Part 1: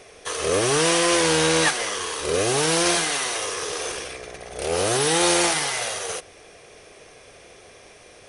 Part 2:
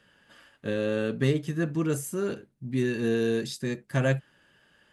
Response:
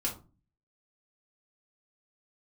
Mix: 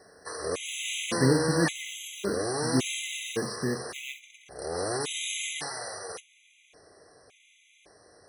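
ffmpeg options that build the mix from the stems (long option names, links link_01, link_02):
-filter_complex "[0:a]volume=-9.5dB,asplit=2[link_01][link_02];[link_02]volume=-13.5dB[link_03];[1:a]acrusher=bits=4:mode=log:mix=0:aa=0.000001,acrossover=split=4500[link_04][link_05];[link_05]acompressor=threshold=-45dB:ratio=4:attack=1:release=60[link_06];[link_04][link_06]amix=inputs=2:normalize=0,volume=0dB,asplit=2[link_07][link_08];[link_08]volume=-14.5dB[link_09];[2:a]atrim=start_sample=2205[link_10];[link_03][link_09]amix=inputs=2:normalize=0[link_11];[link_11][link_10]afir=irnorm=-1:irlink=0[link_12];[link_01][link_07][link_12]amix=inputs=3:normalize=0,highpass=60,afftfilt=real='re*gt(sin(2*PI*0.89*pts/sr)*(1-2*mod(floor(b*sr/1024/2000),2)),0)':imag='im*gt(sin(2*PI*0.89*pts/sr)*(1-2*mod(floor(b*sr/1024/2000),2)),0)':win_size=1024:overlap=0.75"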